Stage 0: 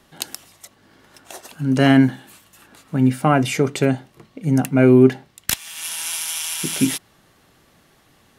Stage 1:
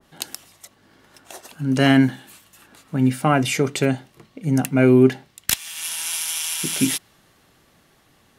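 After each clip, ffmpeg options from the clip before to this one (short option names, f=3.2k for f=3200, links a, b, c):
-af "adynamicequalizer=threshold=0.0251:dfrequency=1700:dqfactor=0.7:tfrequency=1700:tqfactor=0.7:attack=5:release=100:ratio=0.375:range=2:mode=boostabove:tftype=highshelf,volume=-2dB"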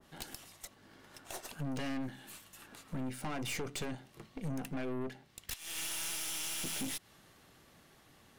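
-af "acompressor=threshold=-26dB:ratio=10,aeval=exprs='(tanh(50.1*val(0)+0.65)-tanh(0.65))/50.1':c=same,volume=-1dB"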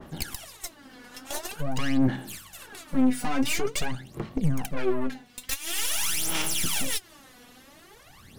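-af "aphaser=in_gain=1:out_gain=1:delay=4.1:decay=0.76:speed=0.47:type=sinusoidal,volume=7dB"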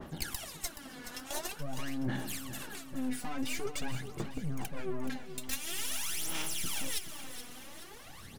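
-af "areverse,acompressor=threshold=-32dB:ratio=6,areverse,aecho=1:1:425|850|1275|1700|2125:0.282|0.138|0.0677|0.0332|0.0162"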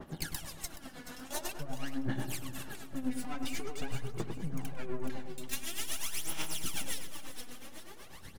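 -filter_complex "[0:a]tremolo=f=8.1:d=0.73,asplit=2[a][b];[b]adelay=100,lowpass=f=1.1k:p=1,volume=-5dB,asplit=2[c][d];[d]adelay=100,lowpass=f=1.1k:p=1,volume=0.52,asplit=2[e][f];[f]adelay=100,lowpass=f=1.1k:p=1,volume=0.52,asplit=2[g][h];[h]adelay=100,lowpass=f=1.1k:p=1,volume=0.52,asplit=2[i][j];[j]adelay=100,lowpass=f=1.1k:p=1,volume=0.52,asplit=2[k][l];[l]adelay=100,lowpass=f=1.1k:p=1,volume=0.52,asplit=2[m][n];[n]adelay=100,lowpass=f=1.1k:p=1,volume=0.52[o];[a][c][e][g][i][k][m][o]amix=inputs=8:normalize=0,volume=1dB"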